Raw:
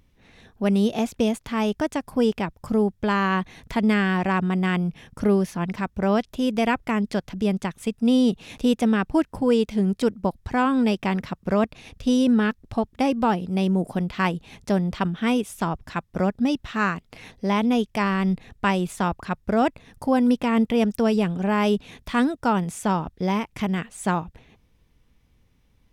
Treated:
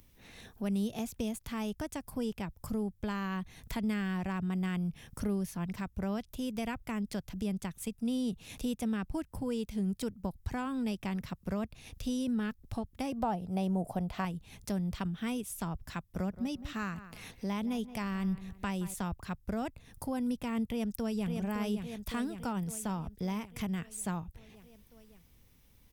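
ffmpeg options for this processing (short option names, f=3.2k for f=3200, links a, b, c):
-filter_complex "[0:a]asettb=1/sr,asplit=3[a][b][c];[a]atrim=end=13.124[d];[b]atrim=start=13.12:end=14.25,asetpts=PTS-STARTPTS,afade=t=in:d=0.004:c=qsin,afade=t=out:st=1.126:d=0.004:c=qsin,equalizer=f=710:w=1.3:g=14.5[e];[c]atrim=start=14.246[f];[d][e]acrossfade=d=0.004:c1=hsin:c2=qsin[g];[g][f]acrossfade=d=0.004:c1=qsin:c2=hsin,asettb=1/sr,asplit=3[h][i][j];[h]atrim=end=16.094[k];[i]atrim=start=16.09:end=18.94,asetpts=PTS-STARTPTS,afade=t=in:d=0.004:c=qsin,afade=t=out:st=2.846:d=0.004:c=qsin,asplit=2[l][m];[m]adelay=172,lowpass=f=2.2k:p=1,volume=-16dB,asplit=2[n][o];[o]adelay=172,lowpass=f=2.2k:p=1,volume=0.23[p];[l][n][p]amix=inputs=3:normalize=0,atrim=end_sample=125685[q];[j]atrim=start=18.936[r];[k][q]acrossfade=d=0.004:c1=hsin:c2=qsin[s];[s][r]acrossfade=d=0.004:c1=qsin:c2=hsin,asplit=2[t][u];[u]afade=t=in:st=20.64:d=0.01,afade=t=out:st=21.3:d=0.01,aecho=0:1:560|1120|1680|2240|2800|3360|3920:0.473151|0.260233|0.143128|0.0787205|0.0432963|0.023813|0.0130971[v];[t][v]amix=inputs=2:normalize=0,aemphasis=mode=production:type=50fm,acrossover=split=140[w][x];[x]acompressor=threshold=-46dB:ratio=2[y];[w][y]amix=inputs=2:normalize=0,volume=-1.5dB"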